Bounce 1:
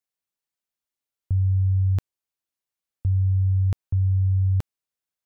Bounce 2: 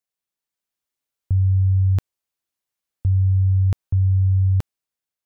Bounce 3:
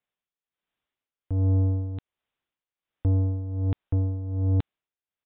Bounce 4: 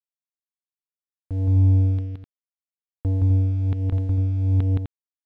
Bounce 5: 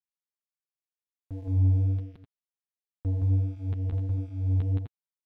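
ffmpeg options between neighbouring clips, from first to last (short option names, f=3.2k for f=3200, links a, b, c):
-af "dynaudnorm=f=170:g=7:m=3.5dB"
-af "aresample=8000,asoftclip=type=tanh:threshold=-24.5dB,aresample=44100,tremolo=f=1.3:d=0.75,volume=5.5dB"
-af "aeval=exprs='sgn(val(0))*max(abs(val(0))-0.00376,0)':c=same,aecho=1:1:169.1|253.6:0.891|0.447"
-af "flanger=delay=5:depth=8.5:regen=-7:speed=1.4:shape=triangular,volume=-4.5dB"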